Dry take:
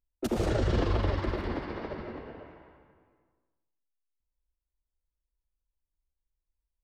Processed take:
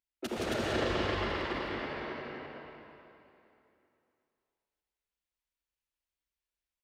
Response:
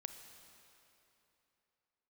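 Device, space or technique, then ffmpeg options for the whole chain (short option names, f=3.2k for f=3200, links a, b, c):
stadium PA: -filter_complex "[0:a]highpass=f=210:p=1,equalizer=f=2.5k:t=o:w=1.9:g=8,aecho=1:1:169.1|271.1:0.708|0.891[a];[1:a]atrim=start_sample=2205[b];[a][b]afir=irnorm=-1:irlink=0,volume=-2dB"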